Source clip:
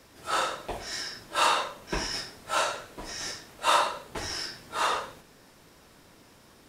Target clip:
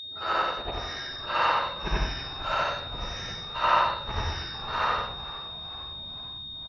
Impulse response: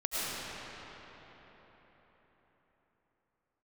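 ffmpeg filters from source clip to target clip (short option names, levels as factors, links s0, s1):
-filter_complex "[0:a]afftfilt=real='re':imag='-im':win_size=8192:overlap=0.75,acrossover=split=3300[s0][s1];[s1]acompressor=threshold=0.00398:ratio=4:attack=1:release=60[s2];[s0][s2]amix=inputs=2:normalize=0,asubboost=boost=7.5:cutoff=120,lowpass=f=5900:w=0.5412,lowpass=f=5900:w=1.3066,aeval=exprs='val(0)+0.0112*sin(2*PI*3700*n/s)':c=same,afftdn=nr=29:nf=-55,highpass=f=42:p=1,equalizer=f=3400:t=o:w=0.21:g=-10,asplit=2[s3][s4];[s4]adelay=14,volume=0.237[s5];[s3][s5]amix=inputs=2:normalize=0,asplit=6[s6][s7][s8][s9][s10][s11];[s7]adelay=453,afreqshift=-73,volume=0.158[s12];[s8]adelay=906,afreqshift=-146,volume=0.0902[s13];[s9]adelay=1359,afreqshift=-219,volume=0.0513[s14];[s10]adelay=1812,afreqshift=-292,volume=0.0295[s15];[s11]adelay=2265,afreqshift=-365,volume=0.0168[s16];[s6][s12][s13][s14][s15][s16]amix=inputs=6:normalize=0,volume=2"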